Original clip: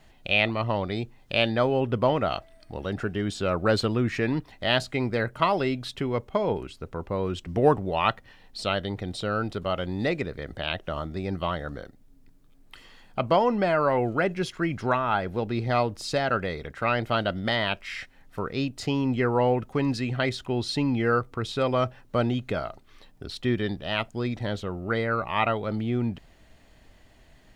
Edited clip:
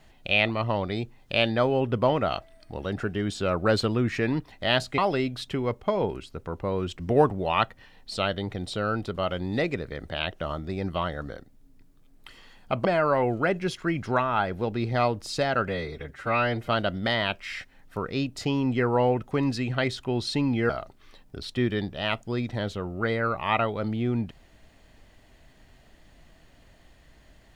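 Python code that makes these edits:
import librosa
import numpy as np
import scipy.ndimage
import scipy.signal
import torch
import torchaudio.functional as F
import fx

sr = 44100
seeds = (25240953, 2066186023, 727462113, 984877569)

y = fx.edit(x, sr, fx.cut(start_s=4.98, length_s=0.47),
    fx.cut(start_s=13.32, length_s=0.28),
    fx.stretch_span(start_s=16.43, length_s=0.67, factor=1.5),
    fx.cut(start_s=21.11, length_s=1.46), tone=tone)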